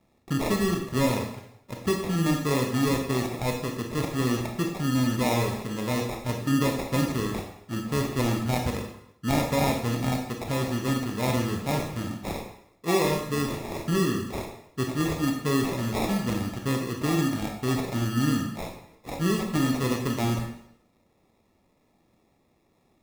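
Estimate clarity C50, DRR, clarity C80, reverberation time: 5.5 dB, 2.0 dB, 8.5 dB, 0.70 s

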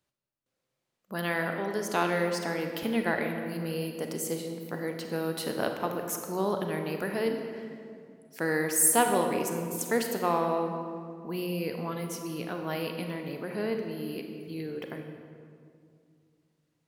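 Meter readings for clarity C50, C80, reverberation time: 5.0 dB, 6.5 dB, 2.3 s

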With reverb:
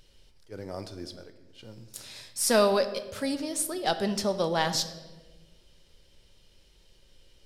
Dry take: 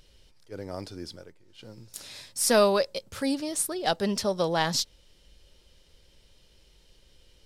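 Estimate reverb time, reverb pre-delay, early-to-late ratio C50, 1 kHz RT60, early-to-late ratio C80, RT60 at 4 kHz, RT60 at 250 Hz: 1.3 s, 5 ms, 12.0 dB, 1.1 s, 13.5 dB, 0.90 s, 1.7 s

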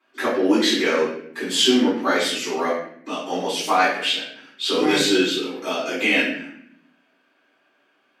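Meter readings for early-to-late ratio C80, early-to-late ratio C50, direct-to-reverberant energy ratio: 6.0 dB, 2.0 dB, −12.0 dB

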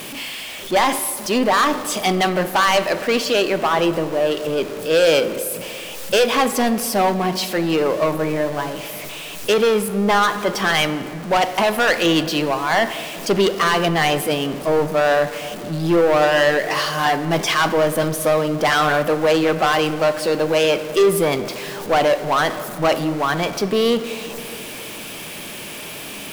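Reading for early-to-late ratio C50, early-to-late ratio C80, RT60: 12.5 dB, 13.5 dB, 2.6 s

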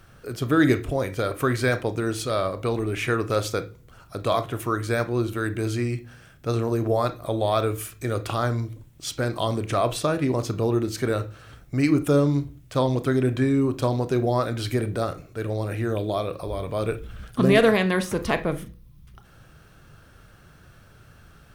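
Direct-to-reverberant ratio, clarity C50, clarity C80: 10.0 dB, 15.5 dB, 22.0 dB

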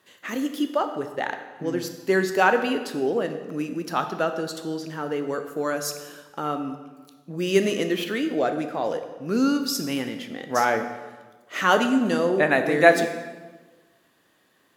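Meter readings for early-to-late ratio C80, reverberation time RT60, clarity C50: 10.5 dB, 1.4 s, 9.0 dB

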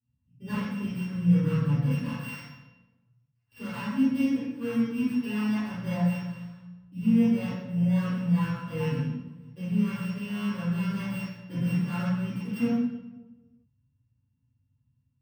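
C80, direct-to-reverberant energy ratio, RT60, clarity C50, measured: 1.0 dB, −16.5 dB, 1.0 s, −4.0 dB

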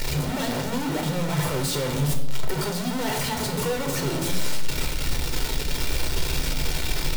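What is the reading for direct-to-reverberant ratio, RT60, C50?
2.5 dB, 1.0 s, 8.5 dB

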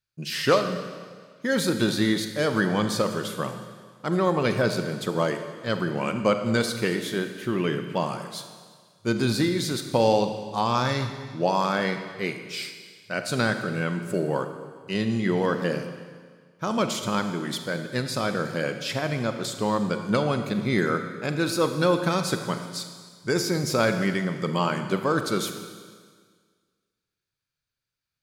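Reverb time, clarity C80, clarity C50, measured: 1.7 s, 9.0 dB, 8.0 dB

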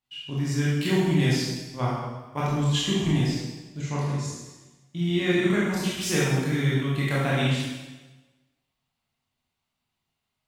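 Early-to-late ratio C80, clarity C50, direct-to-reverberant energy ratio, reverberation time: 1.0 dB, −1.5 dB, −8.0 dB, 1.1 s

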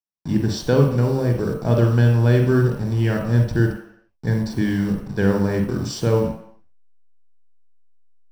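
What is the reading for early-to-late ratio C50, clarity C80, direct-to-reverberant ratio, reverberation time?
5.0 dB, 8.5 dB, 2.5 dB, non-exponential decay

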